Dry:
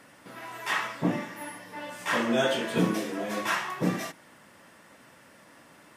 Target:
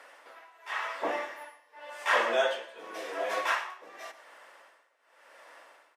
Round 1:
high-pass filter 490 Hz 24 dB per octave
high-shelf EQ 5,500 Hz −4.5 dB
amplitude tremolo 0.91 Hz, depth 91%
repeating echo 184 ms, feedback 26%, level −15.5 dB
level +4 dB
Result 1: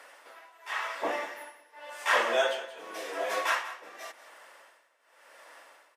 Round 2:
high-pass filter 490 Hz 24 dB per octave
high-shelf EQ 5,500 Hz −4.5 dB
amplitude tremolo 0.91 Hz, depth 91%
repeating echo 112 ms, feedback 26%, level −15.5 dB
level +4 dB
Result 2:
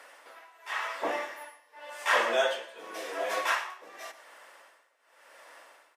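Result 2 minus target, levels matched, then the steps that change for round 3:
8,000 Hz band +4.0 dB
change: high-shelf EQ 5,500 Hz −11.5 dB

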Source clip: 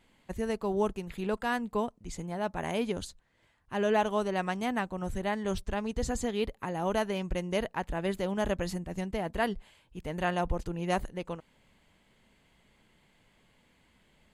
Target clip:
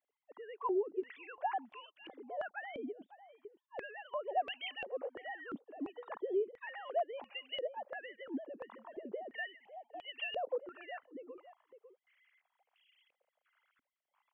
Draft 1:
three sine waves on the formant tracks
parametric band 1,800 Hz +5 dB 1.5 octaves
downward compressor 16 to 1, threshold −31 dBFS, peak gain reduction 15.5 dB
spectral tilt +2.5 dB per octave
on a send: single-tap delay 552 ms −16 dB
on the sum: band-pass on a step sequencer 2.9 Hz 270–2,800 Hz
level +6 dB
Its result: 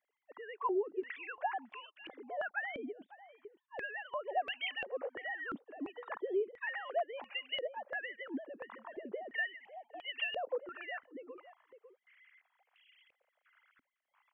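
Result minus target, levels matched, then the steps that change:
2,000 Hz band +5.0 dB
change: parametric band 1,800 Hz −4 dB 1.5 octaves

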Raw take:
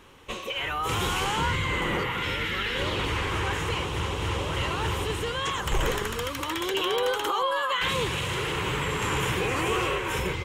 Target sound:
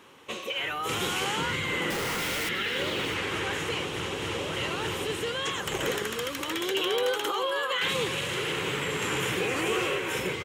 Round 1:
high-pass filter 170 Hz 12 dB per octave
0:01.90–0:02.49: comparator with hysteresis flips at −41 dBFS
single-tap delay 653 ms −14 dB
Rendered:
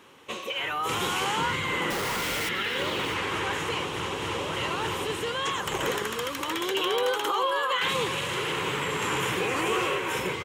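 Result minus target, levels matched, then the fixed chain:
1,000 Hz band +3.5 dB
high-pass filter 170 Hz 12 dB per octave
dynamic equaliser 1,000 Hz, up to −7 dB, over −44 dBFS, Q 2.4
0:01.90–0:02.49: comparator with hysteresis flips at −41 dBFS
single-tap delay 653 ms −14 dB

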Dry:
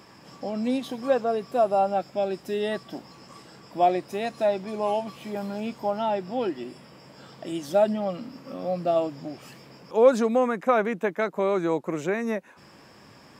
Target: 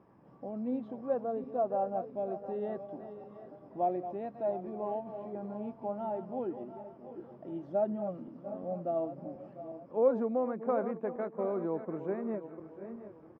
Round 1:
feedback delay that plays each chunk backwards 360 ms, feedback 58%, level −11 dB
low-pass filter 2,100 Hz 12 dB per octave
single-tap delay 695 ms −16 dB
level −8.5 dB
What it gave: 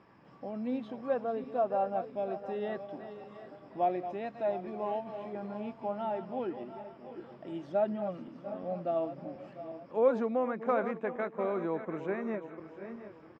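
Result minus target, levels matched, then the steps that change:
2,000 Hz band +9.0 dB
change: low-pass filter 870 Hz 12 dB per octave

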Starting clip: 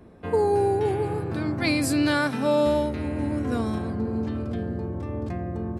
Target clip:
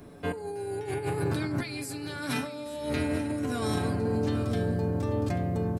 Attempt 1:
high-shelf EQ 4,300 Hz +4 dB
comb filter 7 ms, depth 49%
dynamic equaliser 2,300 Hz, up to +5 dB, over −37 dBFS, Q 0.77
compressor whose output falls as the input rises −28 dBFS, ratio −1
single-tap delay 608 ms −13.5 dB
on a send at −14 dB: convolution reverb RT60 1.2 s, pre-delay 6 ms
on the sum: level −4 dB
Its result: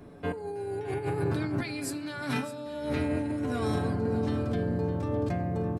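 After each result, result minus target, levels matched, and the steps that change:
echo 229 ms early; 4,000 Hz band −3.0 dB
change: single-tap delay 837 ms −13.5 dB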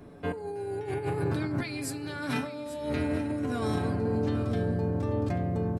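4,000 Hz band −3.0 dB
change: high-shelf EQ 4,300 Hz +14 dB

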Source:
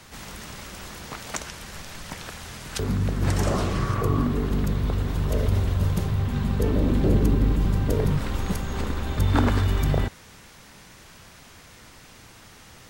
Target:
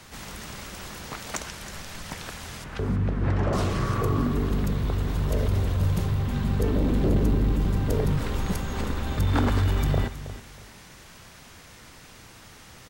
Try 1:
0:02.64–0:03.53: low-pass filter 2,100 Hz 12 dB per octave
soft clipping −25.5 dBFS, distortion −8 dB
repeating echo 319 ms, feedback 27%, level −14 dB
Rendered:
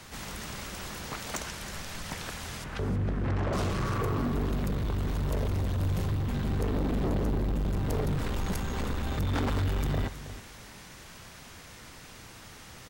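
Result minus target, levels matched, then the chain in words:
soft clipping: distortion +11 dB
0:02.64–0:03.53: low-pass filter 2,100 Hz 12 dB per octave
soft clipping −14.5 dBFS, distortion −19 dB
repeating echo 319 ms, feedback 27%, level −14 dB

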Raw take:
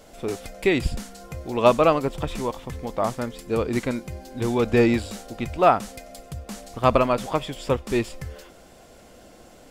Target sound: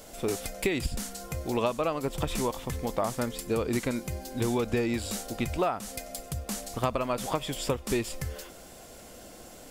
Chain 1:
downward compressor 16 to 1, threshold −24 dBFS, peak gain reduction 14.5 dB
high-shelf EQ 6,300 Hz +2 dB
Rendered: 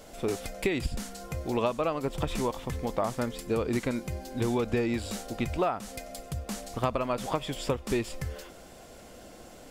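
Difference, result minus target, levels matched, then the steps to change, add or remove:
8,000 Hz band −4.5 dB
change: high-shelf EQ 6,300 Hz +10.5 dB

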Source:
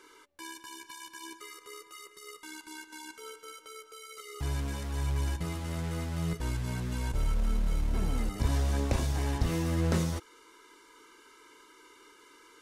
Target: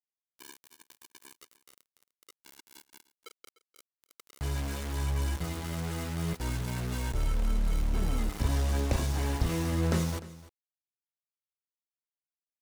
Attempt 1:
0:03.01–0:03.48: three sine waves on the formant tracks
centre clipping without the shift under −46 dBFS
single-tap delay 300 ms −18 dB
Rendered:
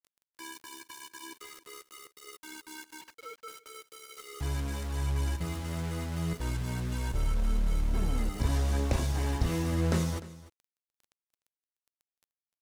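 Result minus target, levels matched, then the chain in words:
centre clipping without the shift: distortion −9 dB
0:03.01–0:03.48: three sine waves on the formant tracks
centre clipping without the shift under −36.5 dBFS
single-tap delay 300 ms −18 dB

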